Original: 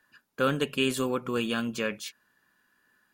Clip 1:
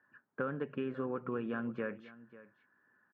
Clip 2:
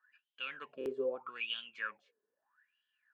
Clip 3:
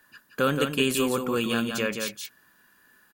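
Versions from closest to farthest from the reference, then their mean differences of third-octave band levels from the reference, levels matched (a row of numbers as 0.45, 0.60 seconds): 3, 1, 2; 5.0, 9.5, 14.0 decibels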